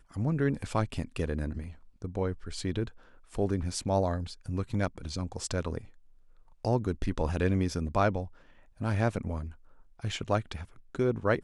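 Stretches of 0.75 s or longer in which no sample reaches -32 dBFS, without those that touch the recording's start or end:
5.78–6.65 s

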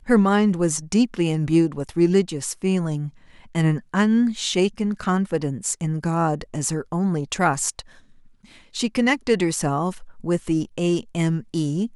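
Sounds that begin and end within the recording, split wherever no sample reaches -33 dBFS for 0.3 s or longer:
3.55–7.81 s

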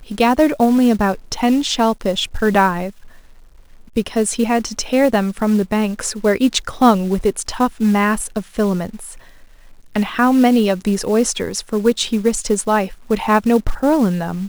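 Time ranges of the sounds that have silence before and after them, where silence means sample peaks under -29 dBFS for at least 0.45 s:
3.96–9.14 s

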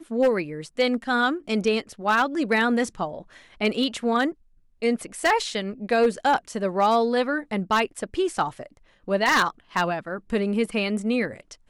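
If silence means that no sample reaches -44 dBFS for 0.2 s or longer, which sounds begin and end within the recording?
4.82–8.77 s

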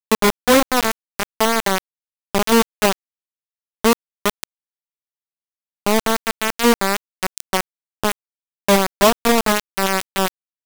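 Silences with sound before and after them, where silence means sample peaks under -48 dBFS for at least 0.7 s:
2.93–3.84 s
4.44–5.86 s

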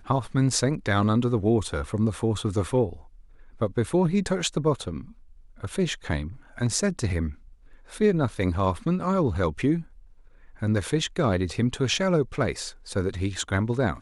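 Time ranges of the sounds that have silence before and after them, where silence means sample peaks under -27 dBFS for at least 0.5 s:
3.62–4.98 s
5.64–7.29 s
8.01–9.79 s

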